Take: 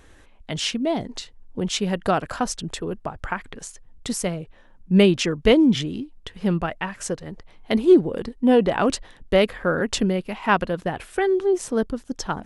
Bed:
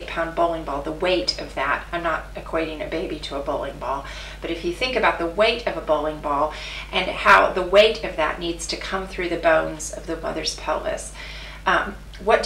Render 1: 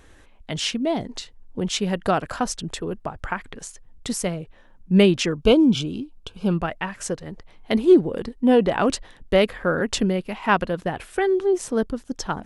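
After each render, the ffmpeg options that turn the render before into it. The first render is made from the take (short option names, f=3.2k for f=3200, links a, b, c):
-filter_complex "[0:a]asettb=1/sr,asplit=3[a][b][c];[a]atrim=end=5.414[d];[b]atrim=start=5.41:end=6.52,asetpts=PTS-STARTPTS,afade=t=in:d=0.004:c=qsin,afade=t=out:st=1.106:d=0.004:c=qsin,asuperstop=centerf=1900:order=8:qfactor=3.1[e];[c]atrim=start=6.516[f];[d][e]acrossfade=d=0.004:c1=hsin:c2=qsin[g];[g][f]acrossfade=d=0.004:c1=qsin:c2=hsin"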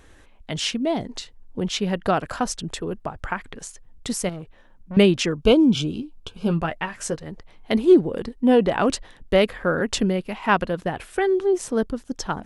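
-filter_complex "[0:a]asettb=1/sr,asplit=3[a][b][c];[a]atrim=end=1.674[d];[b]atrim=start=1.67:end=2.17,asetpts=PTS-STARTPTS,afade=t=in:d=0.004:c=qsin,afade=t=out:st=0.496:d=0.004:c=qsin,equalizer=f=8.4k:t=o:w=0.69:g=-7[e];[c]atrim=start=2.166[f];[d][e]acrossfade=d=0.004:c1=hsin:c2=qsin[g];[g][f]acrossfade=d=0.004:c1=qsin:c2=hsin,asettb=1/sr,asplit=3[h][i][j];[h]atrim=end=4.294[k];[i]atrim=start=4.29:end=4.97,asetpts=PTS-STARTPTS,afade=t=in:d=0.004:c=qsin,afade=t=out:st=0.676:d=0.004:c=qsin,aeval=exprs='(tanh(31.6*val(0)+0.3)-tanh(0.3))/31.6':c=same[l];[j]atrim=start=4.966[m];[k][l]acrossfade=d=0.004:c1=hsin:c2=qsin[n];[n][m]acrossfade=d=0.004:c1=qsin:c2=hsin,asettb=1/sr,asplit=3[o][p][q];[o]atrim=end=5.764[r];[p]atrim=start=5.76:end=7.18,asetpts=PTS-STARTPTS,afade=t=in:d=0.004:c=qsin,afade=t=out:st=1.416:d=0.004:c=qsin,asplit=2[s][t];[t]adelay=13,volume=-8dB[u];[s][u]amix=inputs=2:normalize=0,atrim=end_sample=62622[v];[q]atrim=start=7.176[w];[r][v]acrossfade=d=0.004:c1=hsin:c2=qsin[x];[x][w]acrossfade=d=0.004:c1=qsin:c2=hsin"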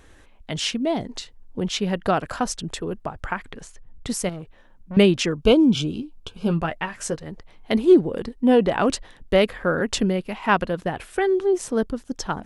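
-filter_complex "[0:a]asettb=1/sr,asplit=3[a][b][c];[a]atrim=end=3.604[d];[b]atrim=start=3.6:end=4.09,asetpts=PTS-STARTPTS,afade=t=in:d=0.004:c=qsin,afade=t=out:st=0.486:d=0.004:c=qsin,bass=f=250:g=4,treble=f=4k:g=-9[e];[c]atrim=start=4.086[f];[d][e]acrossfade=d=0.004:c1=hsin:c2=qsin[g];[g][f]acrossfade=d=0.004:c1=qsin:c2=hsin"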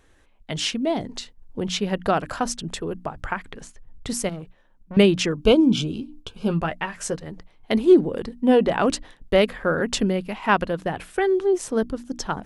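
-af "bandreject=f=60:t=h:w=6,bandreject=f=120:t=h:w=6,bandreject=f=180:t=h:w=6,bandreject=f=240:t=h:w=6,bandreject=f=300:t=h:w=6,agate=range=-7dB:threshold=-43dB:ratio=16:detection=peak"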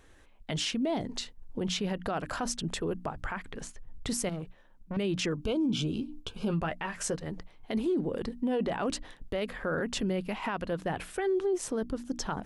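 -af "acompressor=threshold=-32dB:ratio=1.5,alimiter=limit=-23dB:level=0:latency=1:release=17"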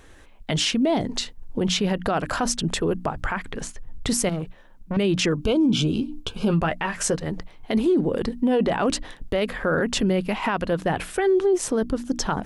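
-af "volume=9dB"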